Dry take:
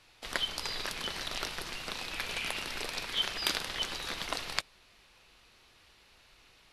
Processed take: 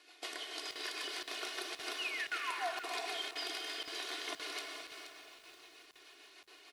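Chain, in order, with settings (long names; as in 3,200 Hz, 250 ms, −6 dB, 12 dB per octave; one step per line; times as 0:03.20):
sound drawn into the spectrogram fall, 0:01.98–0:02.71, 640–3,000 Hz −31 dBFS
downward compressor 5 to 1, threshold −41 dBFS, peak gain reduction 15 dB
rotating-speaker cabinet horn 6.7 Hz
wave folding −31.5 dBFS
linear-phase brick-wall band-pass 270–12,000 Hz
comb filter 2.8 ms, depth 70%
bucket-brigade delay 142 ms, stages 2,048, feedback 68%, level −11 dB
reverb whose tail is shaped and stops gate 470 ms flat, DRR 2 dB
regular buffer underruns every 0.52 s, samples 2,048, zero, from 0:00.71
feedback echo at a low word length 477 ms, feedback 35%, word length 10 bits, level −9.5 dB
level +2 dB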